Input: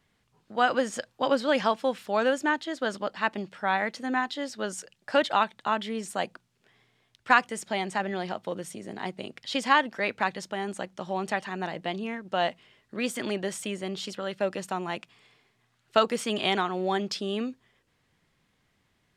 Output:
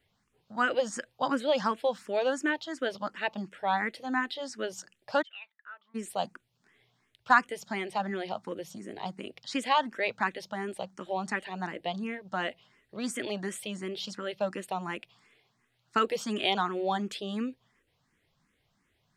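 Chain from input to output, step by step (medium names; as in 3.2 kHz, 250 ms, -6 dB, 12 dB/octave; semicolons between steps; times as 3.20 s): 5.21–5.94 s: band-pass filter 3.5 kHz -> 980 Hz, Q 16; barber-pole phaser +2.8 Hz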